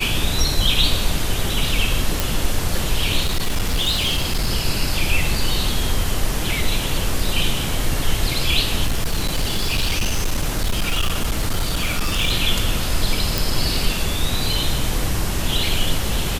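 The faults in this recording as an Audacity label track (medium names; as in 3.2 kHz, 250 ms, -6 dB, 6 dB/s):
2.200000	2.200000	pop
3.230000	4.470000	clipped -15 dBFS
8.870000	12.320000	clipped -15 dBFS
13.380000	13.380000	pop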